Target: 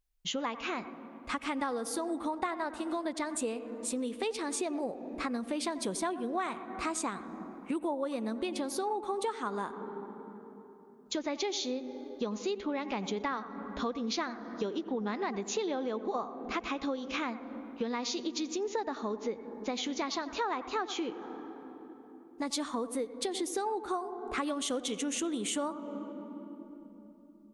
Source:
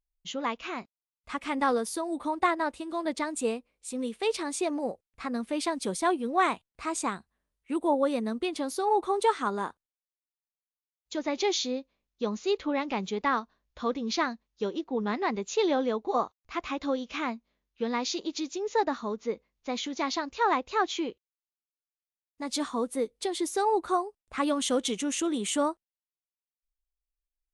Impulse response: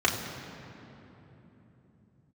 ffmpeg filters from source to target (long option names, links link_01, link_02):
-filter_complex "[0:a]asplit=2[link_01][link_02];[1:a]atrim=start_sample=2205,highshelf=frequency=2700:gain=-11,adelay=88[link_03];[link_02][link_03]afir=irnorm=-1:irlink=0,volume=-26.5dB[link_04];[link_01][link_04]amix=inputs=2:normalize=0,acompressor=threshold=-37dB:ratio=6,volume=5.5dB"